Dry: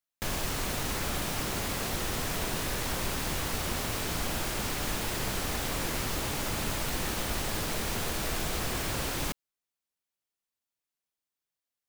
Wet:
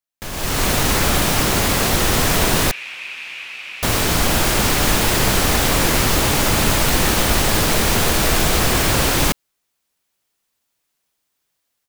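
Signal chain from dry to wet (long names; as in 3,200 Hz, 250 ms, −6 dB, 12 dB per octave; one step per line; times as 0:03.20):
automatic gain control gain up to 16.5 dB
0:02.71–0:03.83: resonant band-pass 2,500 Hz, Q 7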